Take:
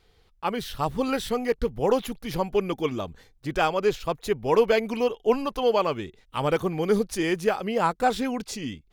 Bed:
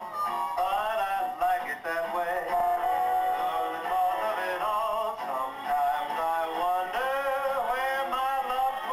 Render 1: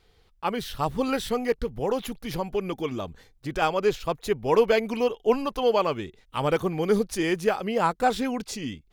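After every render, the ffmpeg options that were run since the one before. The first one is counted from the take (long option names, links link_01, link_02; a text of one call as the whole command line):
ffmpeg -i in.wav -filter_complex "[0:a]asettb=1/sr,asplit=3[link_01][link_02][link_03];[link_01]atrim=end=1.574[link_04];[link_02]atrim=start=1.57:end=3.62,asetpts=PTS-STARTPTS,afade=type=in:duration=0.004:curve=qsin,afade=type=out:start_time=2.046:duration=0.004:curve=qsin,acompressor=threshold=-28dB:ratio=1.5:attack=3.2:release=140:knee=1:detection=peak[link_05];[link_03]atrim=start=3.616[link_06];[link_04][link_05]acrossfade=duration=0.004:curve1=hsin:curve2=qsin[link_07];[link_07][link_06]acrossfade=duration=0.004:curve1=qsin:curve2=hsin" out.wav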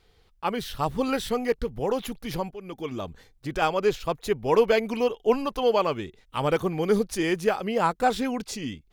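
ffmpeg -i in.wav -filter_complex "[0:a]asplit=2[link_01][link_02];[link_01]atrim=end=2.51,asetpts=PTS-STARTPTS,afade=type=out:start_time=2.506:duration=0.004:curve=hsin:silence=0.141254[link_03];[link_02]atrim=start=2.51,asetpts=PTS-STARTPTS,afade=type=in:duration=0.55:silence=0.141254[link_04];[link_03][link_04]concat=n=2:v=0:a=1" out.wav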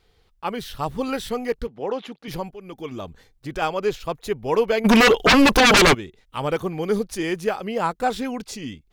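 ffmpeg -i in.wav -filter_complex "[0:a]asettb=1/sr,asplit=3[link_01][link_02][link_03];[link_01]atrim=end=1.674[link_04];[link_02]atrim=start=1.67:end=2.28,asetpts=PTS-STARTPTS,afade=type=in:duration=0.004:curve=qsin,afade=type=out:start_time=0.606:duration=0.004:curve=qsin,highpass=230,lowpass=4200[link_05];[link_03]atrim=start=2.276[link_06];[link_04][link_05]acrossfade=duration=0.004:curve1=hsin:curve2=qsin[link_07];[link_07][link_06]acrossfade=duration=0.004:curve1=qsin:curve2=hsin,asplit=3[link_08][link_09][link_10];[link_08]afade=type=out:start_time=4.84:duration=0.02[link_11];[link_09]aeval=exprs='0.316*sin(PI/2*7.08*val(0)/0.316)':channel_layout=same,afade=type=in:start_time=4.84:duration=0.02,afade=type=out:start_time=5.93:duration=0.02[link_12];[link_10]afade=type=in:start_time=5.93:duration=0.02[link_13];[link_11][link_12][link_13]amix=inputs=3:normalize=0" out.wav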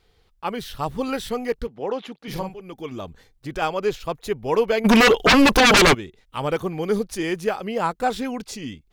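ffmpeg -i in.wav -filter_complex "[0:a]asettb=1/sr,asplit=3[link_01][link_02][link_03];[link_01]atrim=end=2.184[link_04];[link_02]atrim=start=2.18:end=2.61,asetpts=PTS-STARTPTS,afade=type=in:duration=0.004:curve=qsin,afade=type=out:start_time=0.426:duration=0.004:curve=qsin,asplit=2[link_05][link_06];[link_06]adelay=42,volume=-5dB[link_07];[link_05][link_07]amix=inputs=2:normalize=0,atrim=end_sample=18963[link_08];[link_03]atrim=start=2.606[link_09];[link_04][link_08]acrossfade=duration=0.004:curve1=hsin:curve2=qsin[link_10];[link_10][link_09]acrossfade=duration=0.004:curve1=qsin:curve2=hsin" out.wav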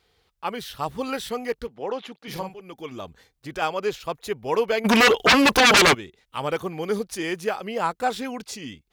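ffmpeg -i in.wav -af "highpass=47,lowshelf=frequency=430:gain=-6" out.wav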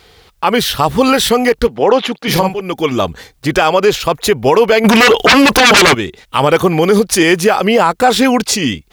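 ffmpeg -i in.wav -filter_complex "[0:a]asplit=2[link_01][link_02];[link_02]acompressor=threshold=-25dB:ratio=6,volume=0dB[link_03];[link_01][link_03]amix=inputs=2:normalize=0,alimiter=level_in=15dB:limit=-1dB:release=50:level=0:latency=1" out.wav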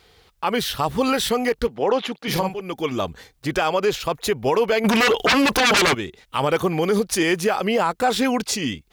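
ffmpeg -i in.wav -af "volume=-9.5dB" out.wav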